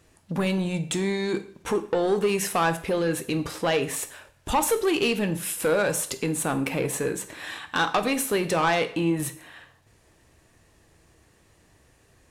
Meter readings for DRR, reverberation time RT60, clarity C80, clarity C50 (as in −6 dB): 9.0 dB, 0.55 s, 17.5 dB, 14.0 dB